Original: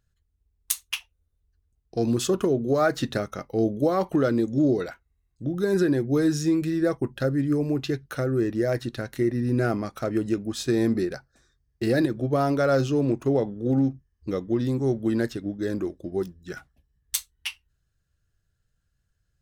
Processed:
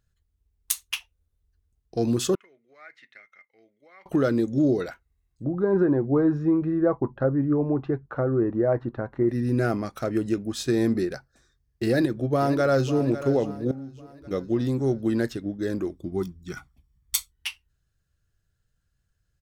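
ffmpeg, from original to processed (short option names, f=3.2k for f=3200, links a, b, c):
-filter_complex "[0:a]asettb=1/sr,asplit=3[a][b][c];[a]atrim=end=2.354[d];[b]atrim=start=2.35:end=4.06,asetpts=PTS-STARTPTS,afade=t=in:d=0.004:c=qsin,afade=t=out:st=1.706:d=0.004:c=qsin,bandpass=f=2.1k:t=q:w=13[e];[c]atrim=start=4.056[f];[d][e]acrossfade=d=0.004:c1=hsin:c2=qsin[g];[g][f]acrossfade=d=0.004:c1=qsin:c2=hsin,asettb=1/sr,asplit=3[h][i][j];[h]atrim=end=5.444[k];[i]atrim=start=5.44:end=9.29,asetpts=PTS-STARTPTS,afade=t=in:d=0.004:c=qsin,afade=t=out:st=3.846:d=0.004:c=qsin,lowpass=f=1k:t=q:w=2.4[l];[j]atrim=start=9.286[m];[k][l]acrossfade=d=0.004:c1=hsin:c2=qsin[n];[n][m]acrossfade=d=0.004:c1=qsin:c2=hsin,asplit=2[o][p];[p]afade=t=in:st=11.86:d=0.01,afade=t=out:st=12.96:d=0.01,aecho=0:1:550|1100|1650|2200:0.237137|0.106712|0.0480203|0.0216091[q];[o][q]amix=inputs=2:normalize=0,asettb=1/sr,asplit=3[r][s][t];[r]atrim=end=13.714[u];[s]atrim=start=13.71:end=14.31,asetpts=PTS-STARTPTS,afade=t=in:d=0.004:c=qsin,afade=t=out:st=0.596:d=0.004:c=qsin,acompressor=threshold=-40dB:ratio=3:attack=3.2:release=140:knee=1:detection=peak[v];[t]atrim=start=14.306[w];[u][v]acrossfade=d=0.004:c1=hsin:c2=qsin[x];[x][w]acrossfade=d=0.004:c1=qsin:c2=hsin,asettb=1/sr,asplit=3[y][z][aa];[y]atrim=end=15.914[ab];[z]atrim=start=15.91:end=17.32,asetpts=PTS-STARTPTS,afade=t=in:d=0.004:c=qsin,afade=t=out:st=1.406:d=0.004:c=qsin,aecho=1:1:0.9:0.65,atrim=end_sample=62181[ac];[aa]atrim=start=17.316[ad];[ab][ac]acrossfade=d=0.004:c1=hsin:c2=qsin[ae];[ae][ad]acrossfade=d=0.004:c1=qsin:c2=hsin"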